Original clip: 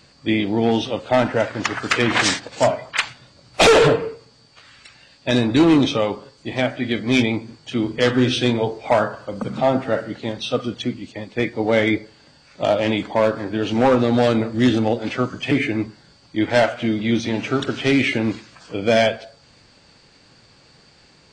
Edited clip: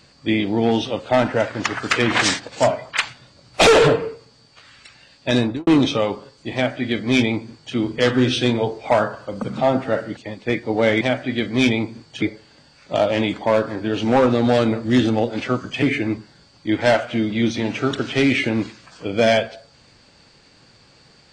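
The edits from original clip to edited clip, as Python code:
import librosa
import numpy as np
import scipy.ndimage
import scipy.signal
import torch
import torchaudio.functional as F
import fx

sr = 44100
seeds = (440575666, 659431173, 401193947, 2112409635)

y = fx.studio_fade_out(x, sr, start_s=5.4, length_s=0.27)
y = fx.edit(y, sr, fx.duplicate(start_s=6.54, length_s=1.21, to_s=11.91),
    fx.cut(start_s=10.17, length_s=0.9), tone=tone)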